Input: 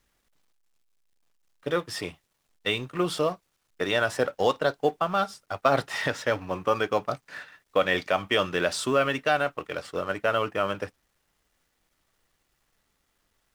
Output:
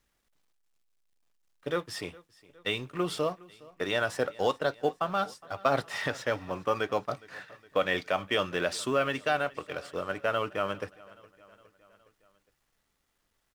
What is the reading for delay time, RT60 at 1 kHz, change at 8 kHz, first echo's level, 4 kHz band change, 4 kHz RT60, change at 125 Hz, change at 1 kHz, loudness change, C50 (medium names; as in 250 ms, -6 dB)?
413 ms, no reverb, -4.0 dB, -22.5 dB, -4.0 dB, no reverb, -4.0 dB, -4.0 dB, -4.0 dB, no reverb